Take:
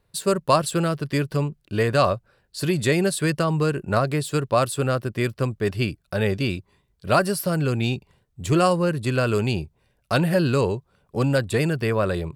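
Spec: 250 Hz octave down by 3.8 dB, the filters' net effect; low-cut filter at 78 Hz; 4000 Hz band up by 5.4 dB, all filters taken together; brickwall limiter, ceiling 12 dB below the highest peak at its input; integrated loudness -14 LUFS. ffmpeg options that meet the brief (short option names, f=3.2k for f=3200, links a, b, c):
-af "highpass=78,equalizer=f=250:t=o:g=-6,equalizer=f=4k:t=o:g=6.5,volume=12dB,alimiter=limit=-2dB:level=0:latency=1"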